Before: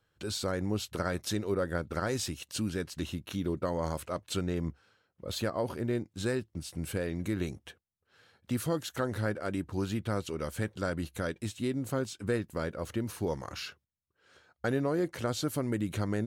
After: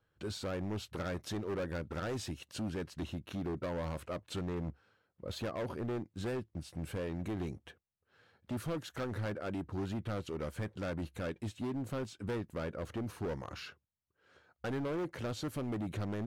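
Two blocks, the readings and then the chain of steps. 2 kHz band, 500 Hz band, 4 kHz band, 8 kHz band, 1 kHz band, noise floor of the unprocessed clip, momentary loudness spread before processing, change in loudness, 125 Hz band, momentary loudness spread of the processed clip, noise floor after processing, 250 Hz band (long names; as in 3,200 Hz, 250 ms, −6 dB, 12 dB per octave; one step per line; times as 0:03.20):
−6.5 dB, −5.5 dB, −7.5 dB, −10.5 dB, −5.5 dB, −78 dBFS, 5 LU, −5.5 dB, −4.5 dB, 5 LU, −81 dBFS, −5.5 dB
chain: high-shelf EQ 3,600 Hz −11 dB
in parallel at +0.5 dB: wave folding −31.5 dBFS
on the sum: level −8 dB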